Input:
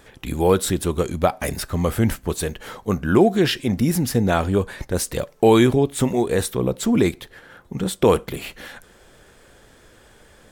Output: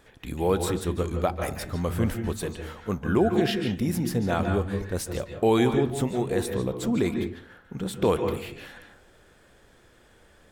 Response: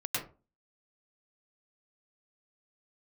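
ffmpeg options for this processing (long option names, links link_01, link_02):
-filter_complex "[0:a]asplit=2[link_01][link_02];[1:a]atrim=start_sample=2205,asetrate=29988,aresample=44100,lowpass=5700[link_03];[link_02][link_03]afir=irnorm=-1:irlink=0,volume=-11dB[link_04];[link_01][link_04]amix=inputs=2:normalize=0,volume=-9dB"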